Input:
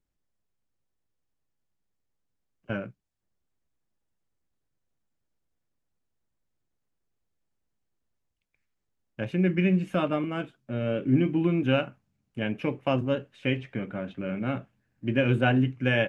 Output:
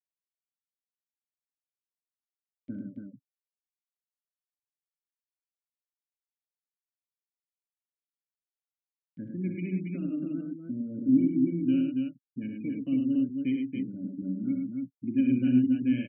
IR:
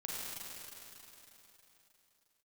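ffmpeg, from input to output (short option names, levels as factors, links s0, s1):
-filter_complex "[0:a]afftfilt=real='re*gte(hypot(re,im),0.0562)':imag='im*gte(hypot(re,im),0.0562)':win_size=1024:overlap=0.75,equalizer=f=110:w=0.32:g=14,acompressor=mode=upward:threshold=0.2:ratio=2.5,asplit=3[s0][s1][s2];[s0]bandpass=f=270:t=q:w=8,volume=1[s3];[s1]bandpass=f=2290:t=q:w=8,volume=0.501[s4];[s2]bandpass=f=3010:t=q:w=8,volume=0.355[s5];[s3][s4][s5]amix=inputs=3:normalize=0,asplit=2[s6][s7];[s7]aecho=0:1:64.14|105|279.9:0.398|0.562|0.631[s8];[s6][s8]amix=inputs=2:normalize=0,volume=0.531"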